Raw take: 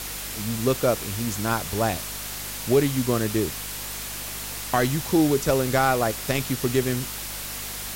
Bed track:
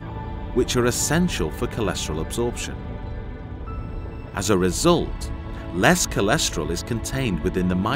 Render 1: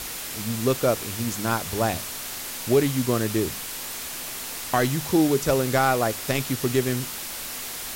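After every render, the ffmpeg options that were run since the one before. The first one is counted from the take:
-af "bandreject=f=50:t=h:w=4,bandreject=f=100:t=h:w=4,bandreject=f=150:t=h:w=4,bandreject=f=200:t=h:w=4"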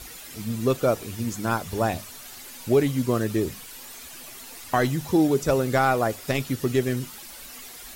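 -af "afftdn=nr=11:nf=-34"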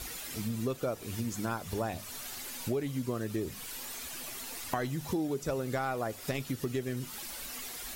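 -af "acompressor=threshold=0.0251:ratio=4"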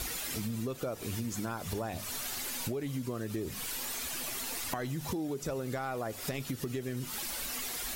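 -filter_complex "[0:a]asplit=2[s0][s1];[s1]alimiter=level_in=1.88:limit=0.0631:level=0:latency=1,volume=0.531,volume=0.891[s2];[s0][s2]amix=inputs=2:normalize=0,acompressor=threshold=0.0224:ratio=4"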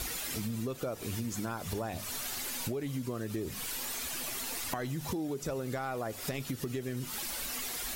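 -af anull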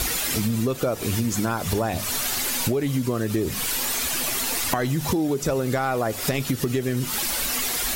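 -af "volume=3.98"

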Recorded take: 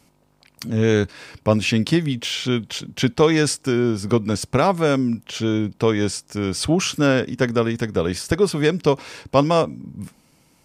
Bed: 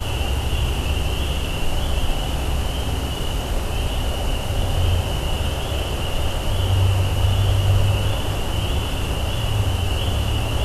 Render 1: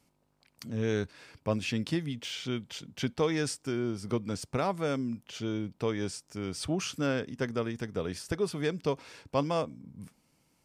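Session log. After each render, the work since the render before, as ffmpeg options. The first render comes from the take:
-af "volume=0.237"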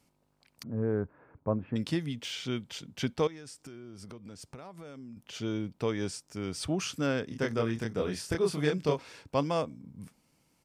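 -filter_complex "[0:a]asettb=1/sr,asplit=3[s0][s1][s2];[s0]atrim=end=0.634[s3];[s1]atrim=start=0.63:end=1.76,asetpts=PTS-STARTPTS,afade=t=in:d=0.004:c=qsin,afade=t=out:st=1.126:d=0.004:c=qsin,lowpass=f=1300:w=0.5412,lowpass=f=1300:w=1.3066[s4];[s2]atrim=start=1.756[s5];[s3][s4]acrossfade=d=0.004:c1=hsin:c2=qsin[s6];[s6][s5]acrossfade=d=0.004:c1=qsin:c2=hsin,asettb=1/sr,asplit=3[s7][s8][s9];[s7]atrim=end=3.274[s10];[s8]atrim=start=3.27:end=5.17,asetpts=PTS-STARTPTS,afade=t=in:d=0.004:c=qsin,afade=t=out:st=1.896:d=0.004:c=qsin,acompressor=threshold=0.00794:ratio=12:attack=3.2:release=140:knee=1:detection=peak[s11];[s9]atrim=start=5.166[s12];[s10][s11]acrossfade=d=0.004:c1=hsin:c2=qsin[s13];[s13][s12]acrossfade=d=0.004:c1=qsin:c2=hsin,asplit=3[s14][s15][s16];[s14]afade=t=out:st=7.3:d=0.02[s17];[s15]asplit=2[s18][s19];[s19]adelay=27,volume=0.794[s20];[s18][s20]amix=inputs=2:normalize=0,afade=t=in:st=7.3:d=0.02,afade=t=out:st=8.99:d=0.02[s21];[s16]afade=t=in:st=8.99:d=0.02[s22];[s17][s21][s22]amix=inputs=3:normalize=0"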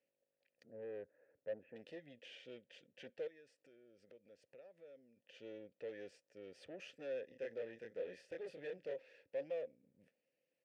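-filter_complex "[0:a]aeval=exprs='(tanh(35.5*val(0)+0.6)-tanh(0.6))/35.5':c=same,asplit=3[s0][s1][s2];[s0]bandpass=f=530:t=q:w=8,volume=1[s3];[s1]bandpass=f=1840:t=q:w=8,volume=0.501[s4];[s2]bandpass=f=2480:t=q:w=8,volume=0.355[s5];[s3][s4][s5]amix=inputs=3:normalize=0"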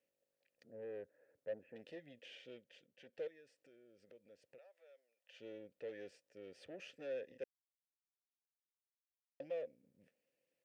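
-filter_complex "[0:a]asettb=1/sr,asplit=3[s0][s1][s2];[s0]atrim=end=4.584[s3];[s1]atrim=start=4.58:end=5.4,asetpts=PTS-STARTPTS,afade=t=in:d=0.004:c=qsin,afade=t=out:st=0.816:d=0.004:c=qsin,highpass=f=610:w=0.5412,highpass=f=610:w=1.3066[s4];[s2]atrim=start=5.396[s5];[s3][s4]acrossfade=d=0.004:c1=hsin:c2=qsin[s6];[s6][s5]acrossfade=d=0.004:c1=qsin:c2=hsin,asplit=4[s7][s8][s9][s10];[s7]atrim=end=3.13,asetpts=PTS-STARTPTS,afade=t=out:st=2.39:d=0.74:silence=0.375837[s11];[s8]atrim=start=3.13:end=7.44,asetpts=PTS-STARTPTS,afade=t=in:d=0.004:c=hsin:silence=0.375837,afade=t=out:st=4.306:d=0.004:c=hsin[s12];[s9]atrim=start=7.44:end=9.4,asetpts=PTS-STARTPTS,volume=0[s13];[s10]atrim=start=9.4,asetpts=PTS-STARTPTS,afade=t=in:d=0.004:c=hsin[s14];[s11][s12][s13][s14]concat=n=4:v=0:a=1"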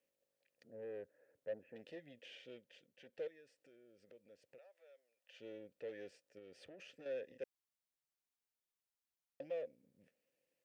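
-filter_complex "[0:a]asettb=1/sr,asplit=3[s0][s1][s2];[s0]atrim=end=6.384[s3];[s1]atrim=start=6.38:end=7.06,asetpts=PTS-STARTPTS,afade=t=in:d=0.004:c=qsin,afade=t=out:st=0.676:d=0.004:c=qsin,acompressor=threshold=0.00251:ratio=6:attack=3.2:release=140:knee=1:detection=peak[s4];[s2]atrim=start=7.056[s5];[s3][s4]acrossfade=d=0.004:c1=hsin:c2=qsin[s6];[s6][s5]acrossfade=d=0.004:c1=qsin:c2=hsin"

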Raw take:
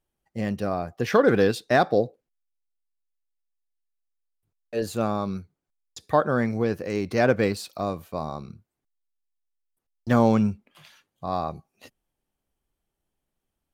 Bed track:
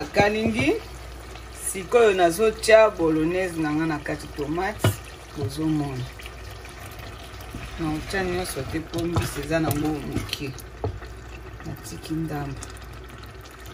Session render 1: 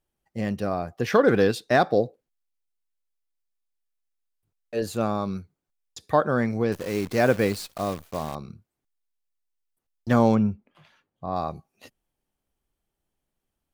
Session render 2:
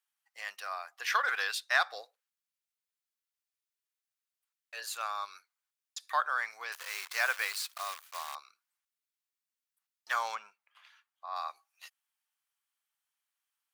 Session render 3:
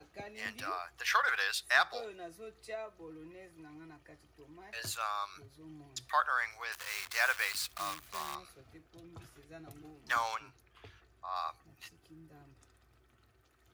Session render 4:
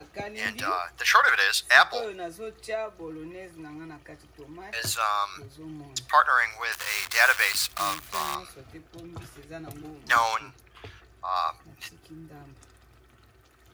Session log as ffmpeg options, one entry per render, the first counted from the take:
-filter_complex "[0:a]asettb=1/sr,asplit=3[s0][s1][s2];[s0]atrim=end=6.724[s3];[s1]atrim=start=6.72:end=8.35,asetpts=PTS-STARTPTS,afade=t=in:d=0.004:c=qsin,afade=t=out:st=1.626:d=0.004:c=qsin,acrusher=bits=7:dc=4:mix=0:aa=0.000001[s4];[s2]atrim=start=8.346[s5];[s3][s4]acrossfade=d=0.004:c1=hsin:c2=qsin[s6];[s6][s5]acrossfade=d=0.004:c1=qsin:c2=hsin,asplit=3[s7][s8][s9];[s7]afade=t=out:st=10.34:d=0.02[s10];[s8]lowpass=f=1200:p=1,afade=t=in:st=10.34:d=0.02,afade=t=out:st=11.35:d=0.02[s11];[s9]afade=t=in:st=11.35:d=0.02[s12];[s10][s11][s12]amix=inputs=3:normalize=0"
-af "highpass=f=1100:w=0.5412,highpass=f=1100:w=1.3066"
-filter_complex "[1:a]volume=0.0398[s0];[0:a][s0]amix=inputs=2:normalize=0"
-af "volume=3.35"

